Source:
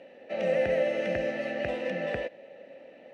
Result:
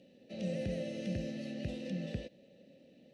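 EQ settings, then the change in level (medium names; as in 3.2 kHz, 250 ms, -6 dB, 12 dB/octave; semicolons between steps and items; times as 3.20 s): FFT filter 190 Hz 0 dB, 1 kHz -28 dB, 2.1 kHz -21 dB, 4 kHz -3 dB; +3.0 dB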